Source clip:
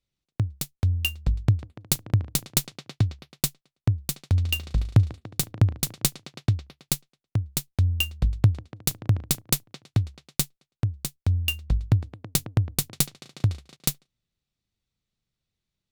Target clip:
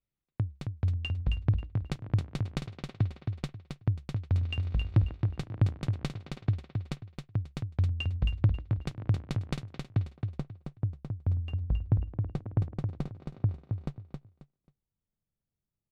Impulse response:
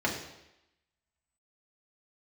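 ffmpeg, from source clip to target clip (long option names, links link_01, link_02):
-af "asetnsamples=nb_out_samples=441:pad=0,asendcmd='10.04 lowpass f 1000',lowpass=2200,volume=10dB,asoftclip=hard,volume=-10dB,aecho=1:1:269|538|807:0.531|0.127|0.0306,volume=-5.5dB"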